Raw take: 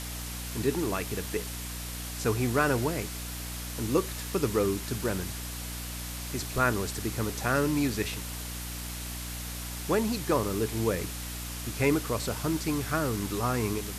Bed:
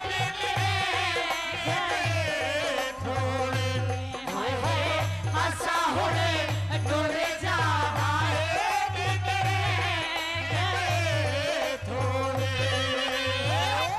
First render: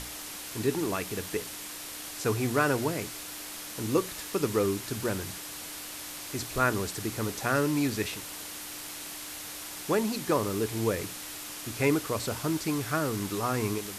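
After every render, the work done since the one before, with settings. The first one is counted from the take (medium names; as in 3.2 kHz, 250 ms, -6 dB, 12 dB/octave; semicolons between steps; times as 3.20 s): hum notches 60/120/180/240 Hz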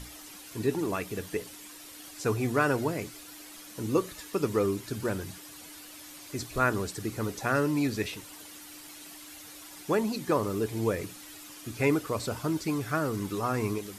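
noise reduction 10 dB, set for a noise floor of -41 dBFS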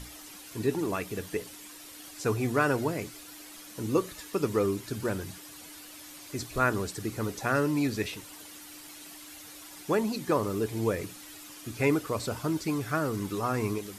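no audible change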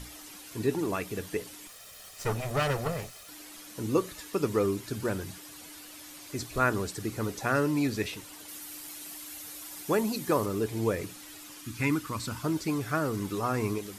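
1.67–3.29 s: comb filter that takes the minimum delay 1.6 ms; 8.48–10.46 s: treble shelf 9 kHz +9.5 dB; 11.61–12.43 s: high-order bell 540 Hz -12 dB 1.2 oct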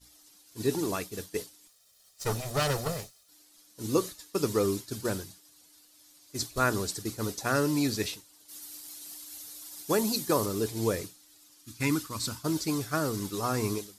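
resonant high shelf 3.3 kHz +6.5 dB, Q 1.5; expander -29 dBFS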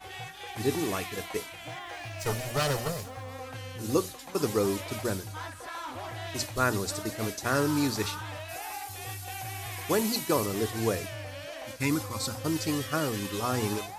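add bed -13 dB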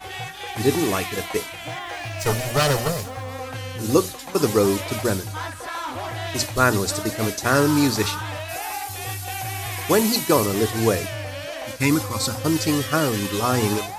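trim +8.5 dB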